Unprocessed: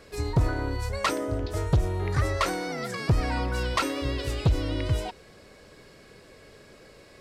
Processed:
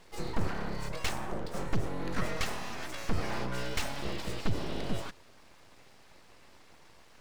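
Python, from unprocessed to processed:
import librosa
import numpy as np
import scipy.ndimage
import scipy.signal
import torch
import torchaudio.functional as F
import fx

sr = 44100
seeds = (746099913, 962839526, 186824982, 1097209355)

y = scipy.ndimage.median_filter(x, 3, mode='constant')
y = np.abs(y)
y = F.gain(torch.from_numpy(y), -4.0).numpy()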